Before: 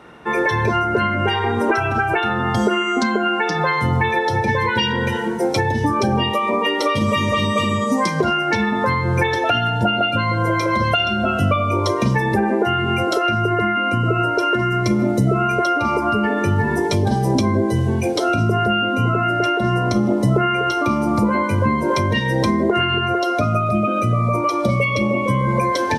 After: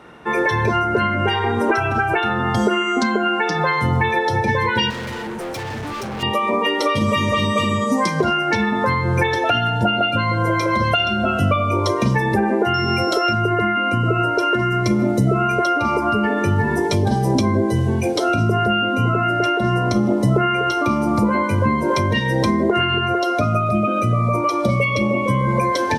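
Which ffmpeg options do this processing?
-filter_complex "[0:a]asettb=1/sr,asplit=3[s0][s1][s2];[s0]atrim=end=4.904[s3];[s1]atrim=start=4.9:end=6.23,asetpts=PTS-STARTPTS,afade=t=in:d=0.004:c=qsin,afade=t=out:st=1.326:d=0.004:c=qsin,volume=21.1,asoftclip=hard,volume=0.0473[s4];[s2]atrim=start=6.226[s5];[s3][s4]acrossfade=d=0.004:c1=hsin:c2=qsin[s6];[s6][s5]acrossfade=d=0.004:c1=qsin:c2=hsin,asettb=1/sr,asplit=3[s7][s8][s9];[s7]atrim=end=12.744[s10];[s8]atrim=start=12.74:end=13.33,asetpts=PTS-STARTPTS,afade=t=in:d=0.004:c=qsin,afade=t=out:st=0.586:d=0.004:c=qsin,aeval=exprs='val(0)+0.0355*sin(2*PI*5400*n/s)':c=same[s11];[s9]atrim=start=13.326[s12];[s10][s11]acrossfade=d=0.004:c1=hsin:c2=qsin[s13];[s13][s12]acrossfade=d=0.004:c1=qsin:c2=hsin"

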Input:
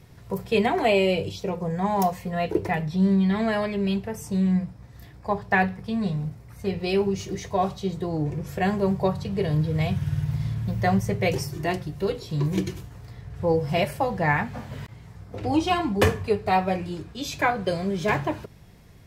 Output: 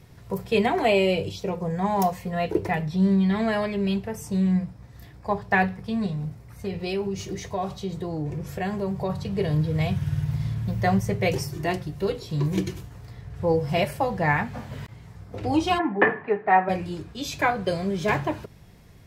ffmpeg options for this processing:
-filter_complex "[0:a]asettb=1/sr,asplit=3[s0][s1][s2];[s0]atrim=end=6.064[s3];[s1]atrim=start=6.06:end=9.1,asetpts=PTS-STARTPTS,afade=t=in:d=0.004:c=qsin,afade=t=out:st=3.036:d=0.004:c=qsin,acompressor=threshold=0.0447:ratio=2:attack=3.2:release=140:knee=1:detection=peak[s4];[s2]atrim=start=9.096[s5];[s3][s4]acrossfade=d=0.004:c1=hsin:c2=qsin[s6];[s6][s5]acrossfade=d=0.004:c1=qsin:c2=hsin,asplit=3[s7][s8][s9];[s7]afade=t=out:st=15.78:d=0.02[s10];[s8]highpass=f=190:w=0.5412,highpass=f=190:w=1.3066,equalizer=f=210:t=q:w=4:g=-3,equalizer=f=330:t=q:w=4:g=3,equalizer=f=480:t=q:w=4:g=-3,equalizer=f=830:t=q:w=4:g=6,equalizer=f=1800:t=q:w=4:g=10,lowpass=f=2200:w=0.5412,lowpass=f=2200:w=1.3066,afade=t=in:st=15.78:d=0.02,afade=t=out:st=16.68:d=0.02[s11];[s9]afade=t=in:st=16.68:d=0.02[s12];[s10][s11][s12]amix=inputs=3:normalize=0"

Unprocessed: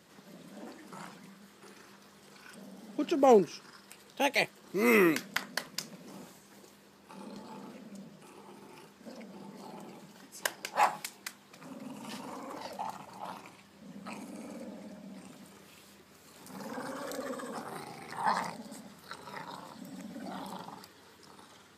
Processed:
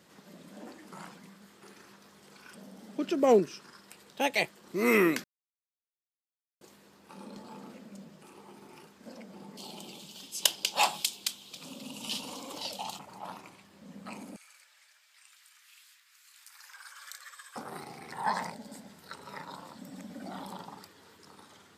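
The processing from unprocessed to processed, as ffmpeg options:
-filter_complex "[0:a]asettb=1/sr,asplit=3[s0][s1][s2];[s0]atrim=end=3.004[s3];[s1]atrim=start=3:end=3.57,asetpts=PTS-STARTPTS,afade=t=in:d=0.004:c=qsin,afade=t=out:st=0.566:d=0.004:c=qsin,equalizer=f=840:t=o:w=0.22:g=-9[s4];[s2]atrim=start=3.566[s5];[s3][s4]acrossfade=d=0.004:c1=hsin:c2=qsin[s6];[s6][s5]acrossfade=d=0.004:c1=qsin:c2=hsin,asettb=1/sr,asplit=3[s7][s8][s9];[s7]atrim=end=9.574[s10];[s8]atrim=start=9.57:end=12.99,asetpts=PTS-STARTPTS,afade=t=in:d=0.004:c=qsin,afade=t=out:st=3.416:d=0.004:c=qsin,highshelf=f=2400:t=q:w=3:g=9.5[s11];[s9]atrim=start=12.986[s12];[s10][s11]acrossfade=d=0.004:c1=hsin:c2=qsin[s13];[s13][s12]acrossfade=d=0.004:c1=qsin:c2=hsin,asettb=1/sr,asplit=3[s14][s15][s16];[s14]atrim=end=14.364[s17];[s15]atrim=start=14.36:end=17.56,asetpts=PTS-STARTPTS,afade=t=in:d=0.004:c=qsin,afade=t=out:st=3.196:d=0.004:c=qsin,highpass=f=1500:w=0.5412,highpass=f=1500:w=1.3066[s18];[s16]atrim=start=17.556[s19];[s17][s18]acrossfade=d=0.004:c1=hsin:c2=qsin[s20];[s20][s19]acrossfade=d=0.004:c1=qsin:c2=hsin,asettb=1/sr,asplit=3[s21][s22][s23];[s21]atrim=end=18.094[s24];[s22]atrim=start=18.09:end=19.1,asetpts=PTS-STARTPTS,afade=t=in:d=0.004:c=qsin,afade=t=out:st=1.006:d=0.004:c=qsin,bandreject=f=1200:w=7.3[s25];[s23]atrim=start=19.096[s26];[s24][s25]acrossfade=d=0.004:c1=hsin:c2=qsin[s27];[s27][s26]acrossfade=d=0.004:c1=qsin:c2=hsin,asplit=3[s28][s29][s30];[s28]atrim=end=5.24,asetpts=PTS-STARTPTS,afade=t=out:st=5.236:d=0.004:c=hsin[s31];[s29]atrim=start=5.24:end=6.61,asetpts=PTS-STARTPTS,volume=0[s32];[s30]atrim=start=6.61,asetpts=PTS-STARTPTS,afade=t=in:d=0.004:c=hsin[s33];[s31][s32][s33]concat=n=3:v=0:a=1"

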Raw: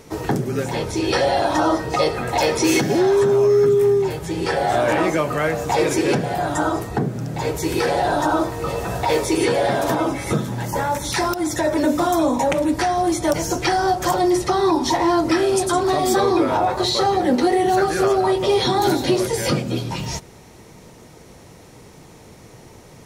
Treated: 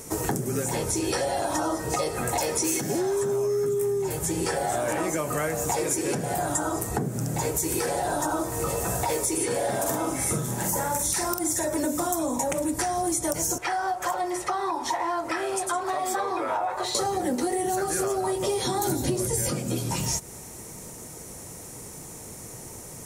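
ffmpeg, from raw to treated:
-filter_complex "[0:a]asettb=1/sr,asplit=3[s0][s1][s2];[s0]atrim=end=9.464[s3];[s1]atrim=start=9.46:end=11.65,asetpts=PTS-STARTPTS,afade=t=in:d=0.004:c=qsin,afade=t=out:st=2.186:d=0.004:c=qsin,asplit=2[s4][s5];[s5]adelay=46,volume=0.596[s6];[s4][s6]amix=inputs=2:normalize=0,atrim=end_sample=96579[s7];[s2]atrim=start=11.646[s8];[s3][s7]acrossfade=d=0.004:c1=hsin:c2=qsin[s9];[s9][s8]acrossfade=d=0.004:c1=qsin:c2=hsin,asettb=1/sr,asplit=3[s10][s11][s12];[s10]atrim=end=13.584[s13];[s11]atrim=start=13.58:end=16.95,asetpts=PTS-STARTPTS,afade=t=in:d=0.004:c=qsin,afade=t=out:st=3.366:d=0.004:c=qsin,acrossover=split=560 3300:gain=0.141 1 0.141[s14][s15][s16];[s14][s15][s16]amix=inputs=3:normalize=0[s17];[s12]atrim=start=16.946[s18];[s13][s17]acrossfade=d=0.004:c1=hsin:c2=qsin[s19];[s19][s18]acrossfade=d=0.004:c1=qsin:c2=hsin,asettb=1/sr,asplit=3[s20][s21][s22];[s20]atrim=end=18.894[s23];[s21]atrim=start=18.89:end=19.49,asetpts=PTS-STARTPTS,afade=t=in:d=0.004:c=qsin,afade=t=out:st=0.596:d=0.004:c=qsin,equalizer=f=66:w=0.32:g=12.5[s24];[s22]atrim=start=19.486[s25];[s23][s24]acrossfade=d=0.004:c1=hsin:c2=qsin[s26];[s26][s25]acrossfade=d=0.004:c1=qsin:c2=hsin,highshelf=f=5700:t=q:w=1.5:g=12.5,acompressor=threshold=0.0631:ratio=6"

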